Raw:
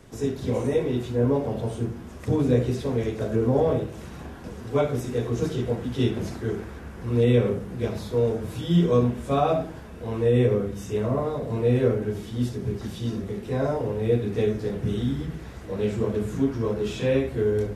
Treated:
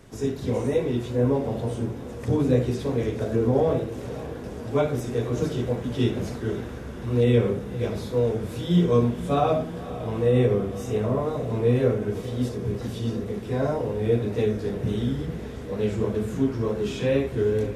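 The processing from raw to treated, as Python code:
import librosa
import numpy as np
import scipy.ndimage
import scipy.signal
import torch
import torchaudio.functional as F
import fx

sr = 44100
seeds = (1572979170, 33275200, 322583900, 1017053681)

y = fx.echo_diffused(x, sr, ms=543, feedback_pct=71, wet_db=-15)
y = fx.wow_flutter(y, sr, seeds[0], rate_hz=2.1, depth_cents=40.0)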